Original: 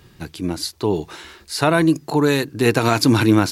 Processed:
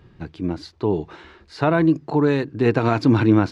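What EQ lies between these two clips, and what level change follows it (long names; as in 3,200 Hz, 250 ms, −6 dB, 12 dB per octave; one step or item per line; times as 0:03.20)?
head-to-tape spacing loss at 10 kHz 30 dB
0.0 dB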